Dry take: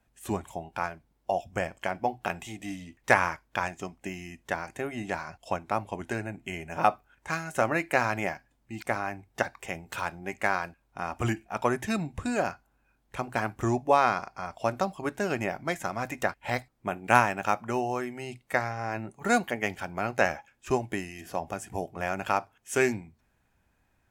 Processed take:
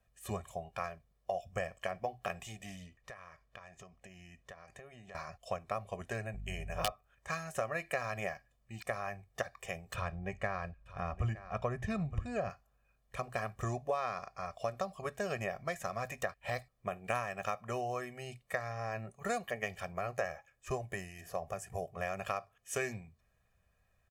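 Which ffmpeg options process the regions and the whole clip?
-filter_complex "[0:a]asettb=1/sr,asplit=3[s0][s1][s2];[s0]atrim=end=2.864[s3];[s1]atrim=start=2.86:end=5.15,asetpts=PTS-STARTPTS,afade=t=in:d=0.004:c=qsin,afade=t=out:st=2.286:d=0.004:c=qsin,highshelf=f=10000:g=-12,acompressor=threshold=0.00631:ratio=5:attack=3.2:release=140:knee=1:detection=peak[s4];[s2]atrim=start=5.146[s5];[s3][s4]acrossfade=d=0.004:c1=hsin:c2=qsin[s6];[s6][s5]acrossfade=d=0.004:c1=qsin:c2=hsin,asettb=1/sr,asplit=3[s7][s8][s9];[s7]atrim=end=6.344[s10];[s8]atrim=start=6.34:end=6.92,asetpts=PTS-STARTPTS,afade=t=in:d=0.004:c=qsin,afade=t=out:st=0.576:d=0.004:c=qsin,aeval=exprs='val(0)+0.0112*(sin(2*PI*50*n/s)+sin(2*PI*2*50*n/s)/2+sin(2*PI*3*50*n/s)/3+sin(2*PI*4*50*n/s)/4+sin(2*PI*5*50*n/s)/5)':c=same,aeval=exprs='(mod(2.82*val(0)+1,2)-1)/2.82':c=same[s11];[s9]atrim=start=6.916[s12];[s10][s11]acrossfade=d=0.004:c1=hsin:c2=qsin[s13];[s13][s12]acrossfade=d=0.004:c1=qsin:c2=hsin,asettb=1/sr,asplit=3[s14][s15][s16];[s14]atrim=end=9.944[s17];[s15]atrim=start=9.94:end=12.5,asetpts=PTS-STARTPTS,afade=t=in:d=0.004:c=qsin,afade=t=out:st=2.556:d=0.004:c=qsin,aemphasis=mode=reproduction:type=bsi,aecho=1:1:916:0.15,atrim=end_sample=112896[s18];[s16]atrim=start=12.496[s19];[s17][s18]acrossfade=d=0.004:c1=hsin:c2=qsin[s20];[s20][s19]acrossfade=d=0.004:c1=qsin:c2=hsin,asettb=1/sr,asplit=3[s21][s22][s23];[s21]atrim=end=19.924[s24];[s22]atrim=start=19.92:end=21.94,asetpts=PTS-STARTPTS,afade=t=in:d=0.004:c=qsin,afade=t=out:st=2.016:d=0.004:c=qsin,equalizer=f=3400:t=o:w=1:g=-4.5,bandreject=f=220:w=6[s25];[s23]atrim=start=21.936[s26];[s24][s25]acrossfade=d=0.004:c1=hsin:c2=qsin[s27];[s27][s26]acrossfade=d=0.004:c1=qsin:c2=hsin,aecho=1:1:1.7:0.84,acompressor=threshold=0.0562:ratio=4,volume=0.447"

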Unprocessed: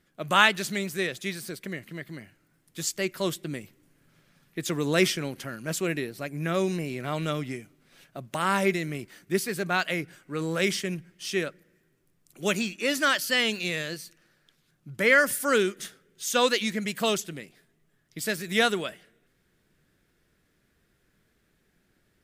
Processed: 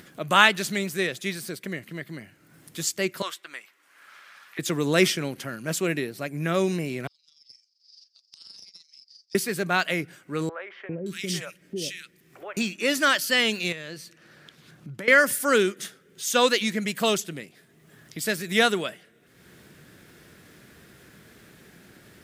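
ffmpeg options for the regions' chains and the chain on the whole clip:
-filter_complex "[0:a]asettb=1/sr,asplit=3[s0][s1][s2];[s0]atrim=end=3.224[s3];[s1]atrim=start=3.22:end=4.59,asetpts=PTS-STARTPTS,afade=t=in:d=0.004:c=qsin,afade=t=out:st=1.366:d=0.004:c=qsin,highpass=f=1200:t=q:w=1.5,aemphasis=mode=reproduction:type=cd[s4];[s2]atrim=start=4.586[s5];[s3][s4]acrossfade=d=0.004:c1=hsin:c2=qsin[s6];[s6][s5]acrossfade=d=0.004:c1=qsin:c2=hsin,asettb=1/sr,asplit=3[s7][s8][s9];[s7]atrim=end=7.074[s10];[s8]atrim=start=7.07:end=9.35,asetpts=PTS-STARTPTS,afade=t=in:d=0.004:c=qsin,afade=t=out:st=2.276:d=0.004:c=qsin,asuperpass=centerf=5000:order=4:qfactor=6.6,tremolo=f=23:d=0.519,aeval=exprs='(tanh(79.4*val(0)+0.5)-tanh(0.5))/79.4':c=same[s11];[s9]atrim=start=9.346[s12];[s10][s11]acrossfade=d=0.004:c1=hsin:c2=qsin[s13];[s13][s12]acrossfade=d=0.004:c1=qsin:c2=hsin,asettb=1/sr,asplit=3[s14][s15][s16];[s14]atrim=end=10.494[s17];[s15]atrim=start=10.49:end=12.57,asetpts=PTS-STARTPTS,afade=t=in:d=0.004:c=qsin,afade=t=out:st=2.076:d=0.004:c=qsin,acompressor=threshold=0.0398:ratio=3:attack=3.2:release=140:knee=1:detection=peak,acrossover=split=540|1900[s18][s19][s20];[s18]adelay=400[s21];[s20]adelay=570[s22];[s21][s19][s22]amix=inputs=3:normalize=0,atrim=end_sample=91728[s23];[s16]atrim=start=12.566[s24];[s17][s23]acrossfade=d=0.004:c1=hsin:c2=qsin[s25];[s25][s24]acrossfade=d=0.004:c1=qsin:c2=hsin,asettb=1/sr,asplit=3[s26][s27][s28];[s26]atrim=end=13.724[s29];[s27]atrim=start=13.72:end=15.08,asetpts=PTS-STARTPTS,afade=t=in:d=0.004:c=qsin,afade=t=out:st=1.356:d=0.004:c=qsin,highshelf=f=6900:g=-9,acompressor=threshold=0.02:ratio=10:attack=3.2:release=140:knee=1:detection=peak[s30];[s28]atrim=start=15.076[s31];[s29][s30]acrossfade=d=0.004:c1=hsin:c2=qsin[s32];[s32][s31]acrossfade=d=0.004:c1=qsin:c2=hsin,highpass=90,acompressor=mode=upward:threshold=0.0112:ratio=2.5,volume=1.33"

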